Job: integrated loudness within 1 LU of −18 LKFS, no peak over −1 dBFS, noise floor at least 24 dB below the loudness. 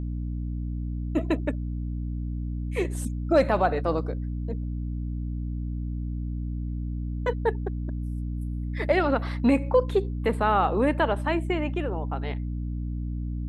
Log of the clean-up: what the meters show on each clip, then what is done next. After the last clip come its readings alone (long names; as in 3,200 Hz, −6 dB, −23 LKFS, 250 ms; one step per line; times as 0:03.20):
mains hum 60 Hz; hum harmonics up to 300 Hz; level of the hum −28 dBFS; integrated loudness −28.0 LKFS; sample peak −9.5 dBFS; target loudness −18.0 LKFS
→ hum removal 60 Hz, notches 5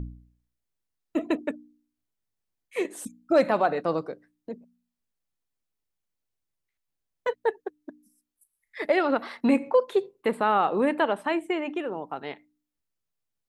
mains hum none found; integrated loudness −26.5 LKFS; sample peak −10.5 dBFS; target loudness −18.0 LKFS
→ level +8.5 dB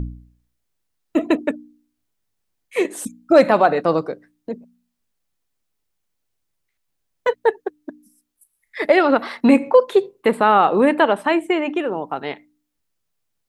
integrated loudness −18.0 LKFS; sample peak −2.0 dBFS; background noise floor −75 dBFS